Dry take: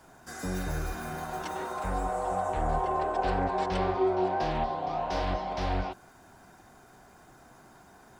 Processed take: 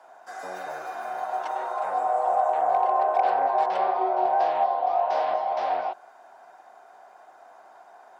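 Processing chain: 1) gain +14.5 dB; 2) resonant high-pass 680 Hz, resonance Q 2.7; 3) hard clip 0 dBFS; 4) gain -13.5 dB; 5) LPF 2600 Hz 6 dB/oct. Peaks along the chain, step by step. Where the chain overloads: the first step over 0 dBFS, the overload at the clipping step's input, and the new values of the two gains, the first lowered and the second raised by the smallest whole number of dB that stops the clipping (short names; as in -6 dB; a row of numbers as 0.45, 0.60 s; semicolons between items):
-1.0, +4.0, 0.0, -13.5, -13.5 dBFS; step 2, 4.0 dB; step 1 +10.5 dB, step 4 -9.5 dB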